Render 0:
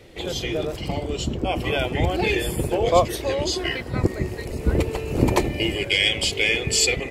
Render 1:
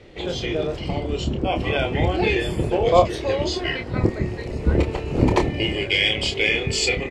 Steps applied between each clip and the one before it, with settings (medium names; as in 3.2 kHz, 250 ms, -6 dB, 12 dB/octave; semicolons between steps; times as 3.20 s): distance through air 100 m; doubling 28 ms -6.5 dB; trim +1 dB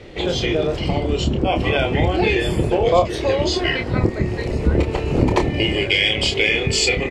compression 2:1, threshold -24 dBFS, peak gain reduction 8.5 dB; trim +7 dB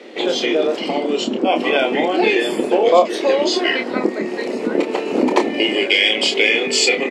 elliptic high-pass 230 Hz, stop band 70 dB; trim +3.5 dB